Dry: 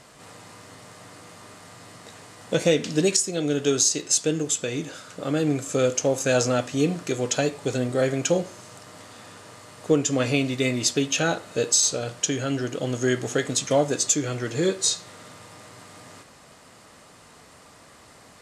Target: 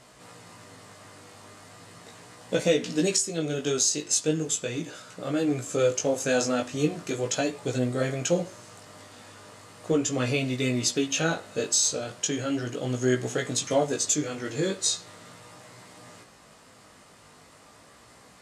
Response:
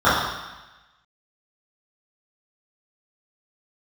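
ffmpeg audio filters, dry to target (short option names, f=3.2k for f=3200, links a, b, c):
-af "flanger=delay=16:depth=4.2:speed=0.38"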